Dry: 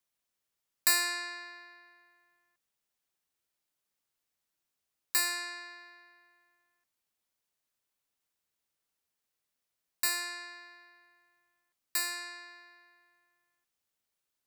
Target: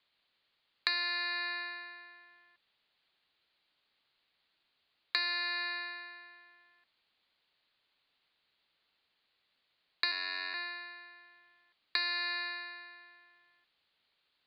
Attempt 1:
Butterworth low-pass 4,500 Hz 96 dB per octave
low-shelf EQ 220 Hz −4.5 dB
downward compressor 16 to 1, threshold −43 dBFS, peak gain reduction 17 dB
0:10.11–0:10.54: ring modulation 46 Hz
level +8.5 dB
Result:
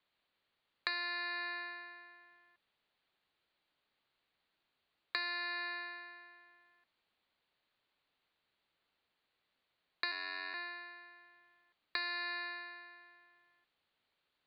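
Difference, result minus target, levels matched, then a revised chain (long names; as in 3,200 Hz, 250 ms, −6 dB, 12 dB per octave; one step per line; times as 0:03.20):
4,000 Hz band −2.5 dB
Butterworth low-pass 4,500 Hz 96 dB per octave
low-shelf EQ 220 Hz −4.5 dB
downward compressor 16 to 1, threshold −43 dBFS, peak gain reduction 17 dB
high-shelf EQ 2,600 Hz +11 dB
0:10.11–0:10.54: ring modulation 46 Hz
level +8.5 dB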